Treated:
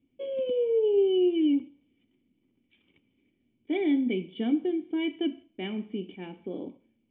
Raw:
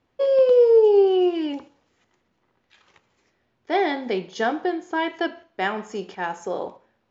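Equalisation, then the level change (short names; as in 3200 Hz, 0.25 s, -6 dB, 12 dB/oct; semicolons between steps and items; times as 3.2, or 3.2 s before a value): vocal tract filter i; +7.5 dB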